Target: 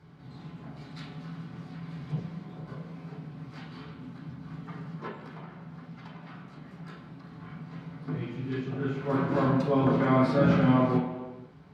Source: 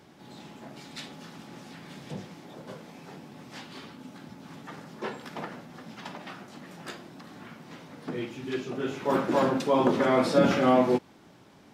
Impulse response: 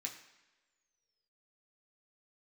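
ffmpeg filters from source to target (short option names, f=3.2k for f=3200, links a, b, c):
-filter_complex "[0:a]bass=f=250:g=12,treble=f=4k:g=-13,asettb=1/sr,asplit=3[a][b][c];[a]atrim=end=5.074[d];[b]atrim=start=5.07:end=7.4,asetpts=PTS-STARTPTS,afade=t=in:d=0.004:c=qsin,afade=t=out:st=2.326:d=0.004:c=qsin,acompressor=threshold=-38dB:ratio=6[e];[c]atrim=start=7.396[f];[d][e]acrossfade=d=0.004:c1=hsin:c2=qsin[g];[g][f]acrossfade=d=0.004:c1=qsin:c2=hsin[h];[1:a]atrim=start_sample=2205,afade=t=out:st=0.38:d=0.01,atrim=end_sample=17199,asetrate=25578,aresample=44100[i];[h][i]afir=irnorm=-1:irlink=0,volume=-4.5dB"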